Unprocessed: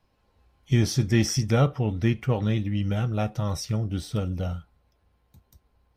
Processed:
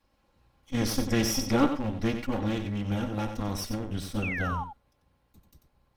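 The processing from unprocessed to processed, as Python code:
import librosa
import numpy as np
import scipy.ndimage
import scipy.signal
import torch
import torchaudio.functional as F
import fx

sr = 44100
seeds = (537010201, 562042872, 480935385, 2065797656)

y = fx.lower_of_two(x, sr, delay_ms=3.6)
y = fx.spec_paint(y, sr, seeds[0], shape='fall', start_s=4.22, length_s=0.42, low_hz=790.0, high_hz=2800.0, level_db=-34.0)
y = y + 10.0 ** (-8.5 / 20.0) * np.pad(y, (int(92 * sr / 1000.0), 0))[:len(y)]
y = fx.attack_slew(y, sr, db_per_s=490.0)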